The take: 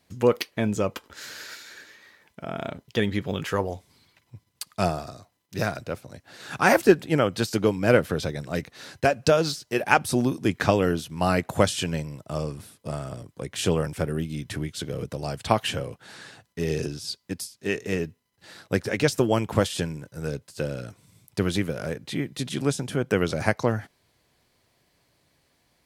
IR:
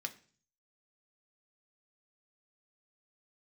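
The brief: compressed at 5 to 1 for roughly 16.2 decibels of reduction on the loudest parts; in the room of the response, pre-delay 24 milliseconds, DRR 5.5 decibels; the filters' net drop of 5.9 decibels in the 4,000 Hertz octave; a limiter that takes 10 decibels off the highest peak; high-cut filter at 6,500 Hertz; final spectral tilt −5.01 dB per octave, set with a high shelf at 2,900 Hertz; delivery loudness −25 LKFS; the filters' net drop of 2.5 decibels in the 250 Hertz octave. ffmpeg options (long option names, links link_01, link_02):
-filter_complex "[0:a]lowpass=6500,equalizer=frequency=250:width_type=o:gain=-3.5,highshelf=frequency=2900:gain=-4.5,equalizer=frequency=4000:width_type=o:gain=-3.5,acompressor=threshold=-31dB:ratio=5,alimiter=limit=-24dB:level=0:latency=1,asplit=2[link_01][link_02];[1:a]atrim=start_sample=2205,adelay=24[link_03];[link_02][link_03]afir=irnorm=-1:irlink=0,volume=-5dB[link_04];[link_01][link_04]amix=inputs=2:normalize=0,volume=13dB"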